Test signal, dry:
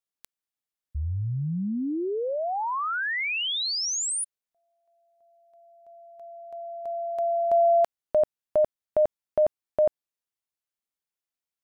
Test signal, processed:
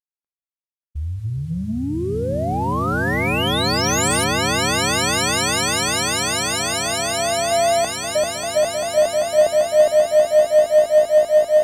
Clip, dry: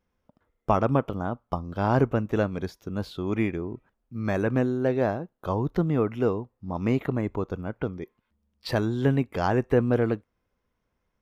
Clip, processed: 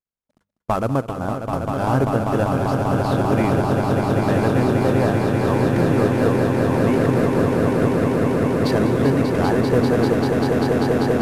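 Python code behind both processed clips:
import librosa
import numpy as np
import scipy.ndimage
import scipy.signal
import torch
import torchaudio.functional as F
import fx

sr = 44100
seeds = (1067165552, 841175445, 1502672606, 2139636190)

p1 = fx.cvsd(x, sr, bps=64000)
p2 = fx.gate_hold(p1, sr, open_db=-46.0, close_db=-54.0, hold_ms=100.0, range_db=-27, attack_ms=11.0, release_ms=40.0)
p3 = fx.hum_notches(p2, sr, base_hz=50, count=4)
p4 = 10.0 ** (-24.0 / 20.0) * np.tanh(p3 / 10.0 ** (-24.0 / 20.0))
p5 = p3 + F.gain(torch.from_numpy(p4), -3.5).numpy()
y = fx.echo_swell(p5, sr, ms=196, loudest=8, wet_db=-5.5)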